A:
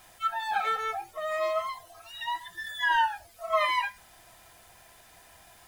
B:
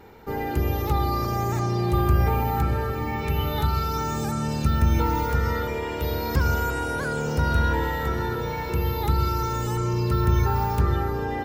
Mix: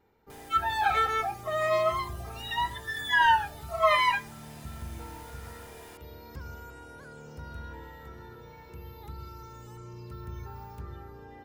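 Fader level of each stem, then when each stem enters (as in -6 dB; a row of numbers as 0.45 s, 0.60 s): +3.0 dB, -20.0 dB; 0.30 s, 0.00 s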